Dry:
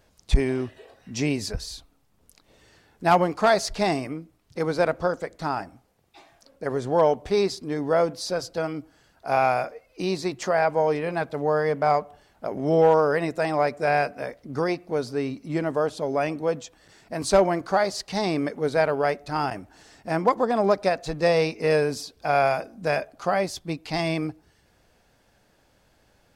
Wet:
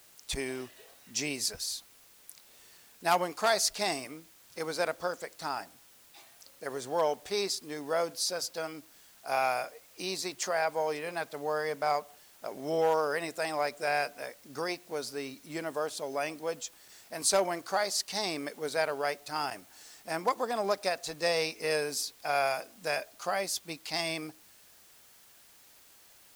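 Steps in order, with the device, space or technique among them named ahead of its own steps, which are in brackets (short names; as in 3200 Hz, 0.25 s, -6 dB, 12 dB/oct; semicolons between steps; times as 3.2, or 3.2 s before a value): turntable without a phono preamp (RIAA curve recording; white noise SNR 25 dB); gain -7 dB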